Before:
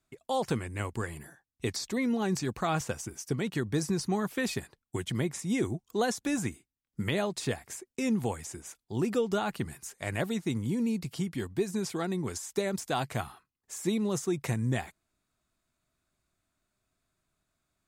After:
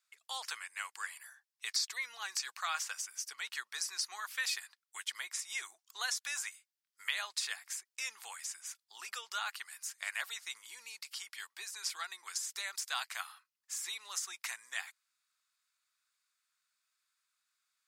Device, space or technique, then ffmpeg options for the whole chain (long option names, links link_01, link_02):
headphones lying on a table: -af "highpass=frequency=1200:width=0.5412,highpass=frequency=1200:width=1.3066,equalizer=frequency=4900:width_type=o:width=0.53:gain=5"